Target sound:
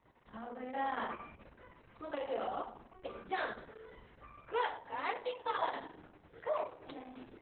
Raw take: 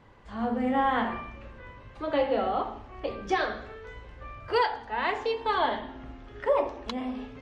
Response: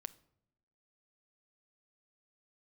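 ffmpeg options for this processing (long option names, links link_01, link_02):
-filter_complex "[0:a]highpass=frequency=100:poles=1,highshelf=frequency=4200:gain=-5,acrossover=split=380|3000[link_01][link_02][link_03];[link_01]acompressor=threshold=-40dB:ratio=10[link_04];[link_04][link_02][link_03]amix=inputs=3:normalize=0,asettb=1/sr,asplit=3[link_05][link_06][link_07];[link_05]atrim=end=4.764[link_08];[link_06]atrim=start=4.76:end=6.98,asetpts=PTS-STARTPTS,afade=type=in:duration=0.004:curve=qsin,afade=type=out:start_time=2.216:duration=0.004:curve=qsin,afreqshift=45[link_09];[link_07]atrim=start=6.976[link_10];[link_08][link_09]acrossfade=duration=0.004:curve1=hsin:curve2=qsin[link_11];[link_11][link_10]acrossfade=duration=0.004:curve1=qsin:curve2=hsin[link_12];[1:a]atrim=start_sample=2205,asetrate=66150,aresample=44100[link_13];[link_12][link_13]afir=irnorm=-1:irlink=0,volume=-1.5dB" -ar 48000 -c:a libopus -b:a 6k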